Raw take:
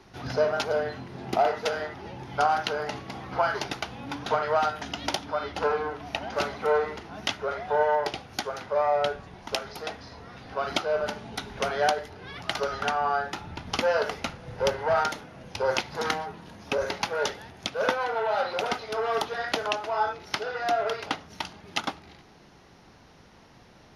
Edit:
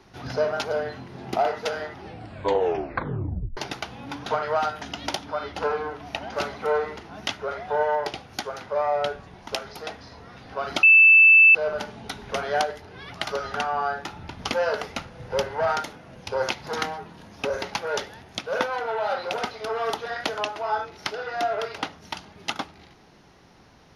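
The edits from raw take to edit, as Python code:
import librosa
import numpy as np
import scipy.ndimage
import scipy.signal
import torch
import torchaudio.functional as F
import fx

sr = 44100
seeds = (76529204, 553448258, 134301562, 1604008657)

y = fx.edit(x, sr, fx.tape_stop(start_s=1.99, length_s=1.58),
    fx.insert_tone(at_s=10.83, length_s=0.72, hz=2640.0, db=-9.5), tone=tone)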